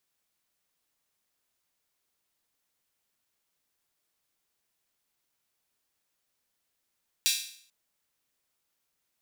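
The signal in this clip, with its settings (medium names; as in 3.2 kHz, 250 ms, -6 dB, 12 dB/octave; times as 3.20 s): open hi-hat length 0.44 s, high-pass 3.3 kHz, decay 0.57 s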